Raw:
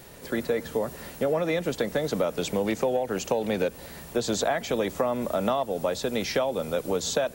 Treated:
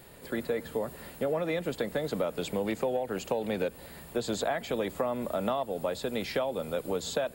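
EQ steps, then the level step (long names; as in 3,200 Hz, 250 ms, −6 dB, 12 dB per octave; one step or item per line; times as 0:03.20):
parametric band 5,900 Hz −14 dB 0.22 octaves
−4.5 dB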